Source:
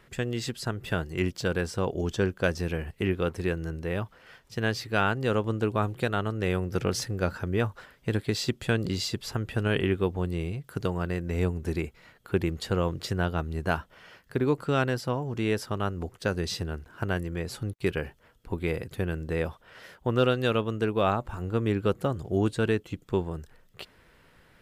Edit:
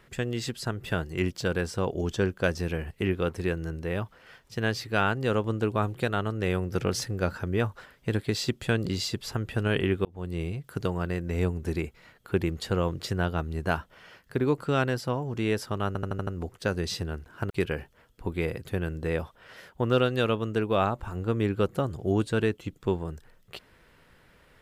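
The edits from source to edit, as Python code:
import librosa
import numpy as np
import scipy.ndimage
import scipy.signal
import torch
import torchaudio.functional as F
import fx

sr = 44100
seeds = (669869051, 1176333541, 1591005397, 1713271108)

y = fx.edit(x, sr, fx.fade_in_span(start_s=10.05, length_s=0.36),
    fx.stutter(start_s=15.87, slice_s=0.08, count=6),
    fx.cut(start_s=17.1, length_s=0.66), tone=tone)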